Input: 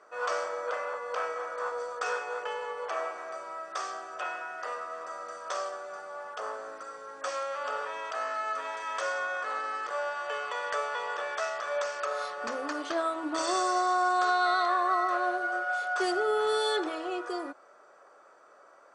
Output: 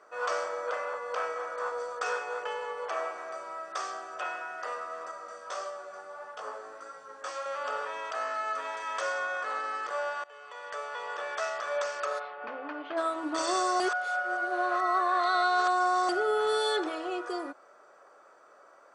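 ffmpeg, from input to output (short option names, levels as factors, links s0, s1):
-filter_complex "[0:a]asettb=1/sr,asplit=3[s0][s1][s2];[s0]atrim=end=5.114[s3];[s1]atrim=start=5.11:end=7.46,asetpts=PTS-STARTPTS,afade=t=in:d=0.004:c=qsin,afade=t=out:st=2.346:d=0.004:c=qsin,flanger=delay=17:depth=4.1:speed=1.6[s4];[s2]atrim=start=7.456[s5];[s3][s4]acrossfade=d=0.004:c1=hsin:c2=qsin[s6];[s6][s5]acrossfade=d=0.004:c1=qsin:c2=hsin,asplit=3[s7][s8][s9];[s7]afade=t=out:st=12.18:d=0.02[s10];[s8]highpass=f=160:w=0.5412,highpass=f=160:w=1.3066,equalizer=f=230:t=q:w=4:g=-10,equalizer=f=360:t=q:w=4:g=-5,equalizer=f=540:t=q:w=4:g=-6,equalizer=f=1200:t=q:w=4:g=-7,equalizer=f=1800:t=q:w=4:g=-6,lowpass=f=2700:w=0.5412,lowpass=f=2700:w=1.3066,afade=t=in:st=12.18:d=0.02,afade=t=out:st=12.96:d=0.02[s11];[s9]afade=t=in:st=12.96:d=0.02[s12];[s10][s11][s12]amix=inputs=3:normalize=0,asplit=4[s13][s14][s15][s16];[s13]atrim=end=10.24,asetpts=PTS-STARTPTS,afade=t=out:st=10.236:d=0.004:c=hsin:silence=0.0841395[s17];[s14]atrim=start=10.24:end=13.802,asetpts=PTS-STARTPTS,afade=t=in:d=1.24:silence=0.0841395[s18];[s15]atrim=start=13.798:end=16.092,asetpts=PTS-STARTPTS,areverse[s19];[s16]atrim=start=16.088[s20];[s17][s18]concat=n=2:v=0:a=1[s21];[s21][s19]acrossfade=d=0.004:c1=hsin:c2=hsin[s22];[s22][s20]acrossfade=d=0.004:c1=hsin:c2=hsin"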